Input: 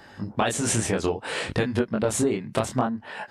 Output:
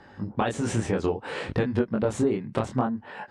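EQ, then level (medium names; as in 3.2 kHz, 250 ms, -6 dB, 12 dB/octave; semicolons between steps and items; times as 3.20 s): low-pass 7.7 kHz 12 dB/octave; treble shelf 2.1 kHz -10.5 dB; band-stop 650 Hz, Q 12; 0.0 dB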